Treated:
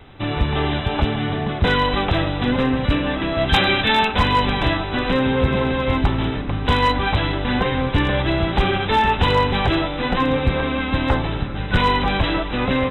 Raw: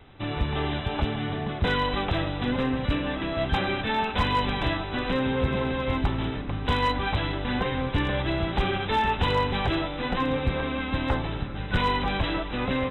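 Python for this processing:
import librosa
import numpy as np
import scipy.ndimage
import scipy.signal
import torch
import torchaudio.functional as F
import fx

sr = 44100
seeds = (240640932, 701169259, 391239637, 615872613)

y = fx.high_shelf(x, sr, hz=fx.line((3.47, 2300.0), (4.07, 2900.0)), db=11.5, at=(3.47, 4.07), fade=0.02)
y = F.gain(torch.from_numpy(y), 7.0).numpy()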